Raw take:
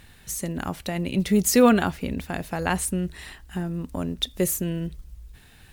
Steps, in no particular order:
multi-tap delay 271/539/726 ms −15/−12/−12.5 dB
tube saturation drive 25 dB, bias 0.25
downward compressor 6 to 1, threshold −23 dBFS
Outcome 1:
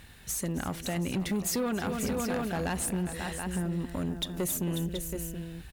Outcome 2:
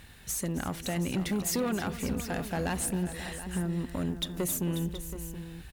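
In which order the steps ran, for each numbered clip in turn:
multi-tap delay, then downward compressor, then tube saturation
downward compressor, then tube saturation, then multi-tap delay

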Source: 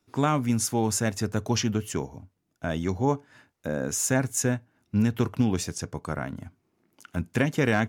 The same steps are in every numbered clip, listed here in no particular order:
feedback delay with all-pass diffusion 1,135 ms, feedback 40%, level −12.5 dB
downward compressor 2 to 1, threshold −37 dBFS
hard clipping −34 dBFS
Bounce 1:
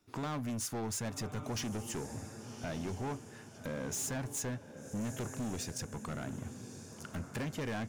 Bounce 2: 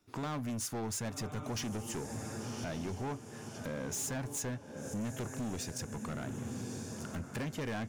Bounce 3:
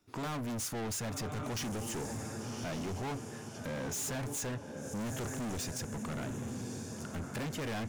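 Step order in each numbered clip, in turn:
downward compressor, then feedback delay with all-pass diffusion, then hard clipping
feedback delay with all-pass diffusion, then downward compressor, then hard clipping
feedback delay with all-pass diffusion, then hard clipping, then downward compressor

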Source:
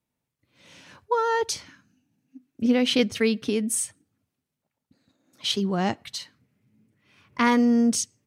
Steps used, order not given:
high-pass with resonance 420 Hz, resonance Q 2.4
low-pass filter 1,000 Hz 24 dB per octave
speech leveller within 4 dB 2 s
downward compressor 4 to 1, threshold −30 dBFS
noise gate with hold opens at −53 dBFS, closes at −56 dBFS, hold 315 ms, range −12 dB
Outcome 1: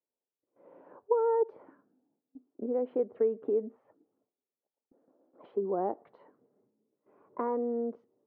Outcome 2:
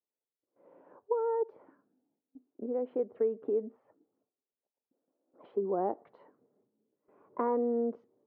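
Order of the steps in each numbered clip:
speech leveller, then downward compressor, then high-pass with resonance, then noise gate with hold, then low-pass filter
downward compressor, then high-pass with resonance, then noise gate with hold, then speech leveller, then low-pass filter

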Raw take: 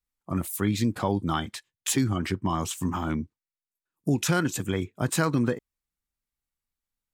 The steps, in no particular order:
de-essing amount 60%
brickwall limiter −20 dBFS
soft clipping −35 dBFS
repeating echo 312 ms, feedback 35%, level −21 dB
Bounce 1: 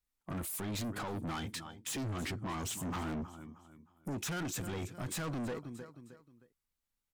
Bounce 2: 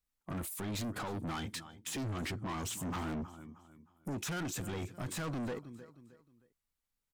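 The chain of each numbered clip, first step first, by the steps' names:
repeating echo, then brickwall limiter, then soft clipping, then de-essing
brickwall limiter, then de-essing, then repeating echo, then soft clipping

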